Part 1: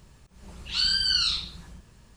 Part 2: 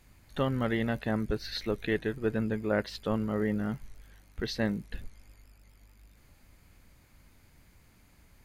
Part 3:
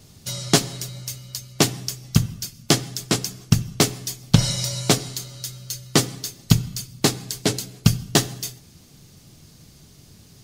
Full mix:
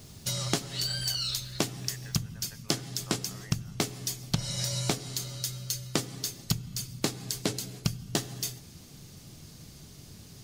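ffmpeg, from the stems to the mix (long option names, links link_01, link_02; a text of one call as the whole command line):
ffmpeg -i stem1.wav -i stem2.wav -i stem3.wav -filter_complex "[0:a]aemphasis=mode=production:type=50fm,aecho=1:1:3.1:0.73,volume=-11.5dB[link_01];[1:a]highpass=frequency=740:width=0.5412,highpass=frequency=740:width=1.3066,volume=-10dB[link_02];[2:a]volume=0dB[link_03];[link_01][link_02][link_03]amix=inputs=3:normalize=0,acompressor=threshold=-27dB:ratio=5" out.wav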